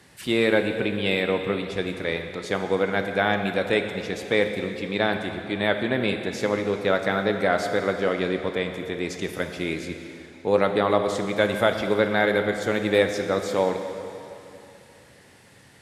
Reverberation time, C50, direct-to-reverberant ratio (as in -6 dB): 2.9 s, 6.5 dB, 5.5 dB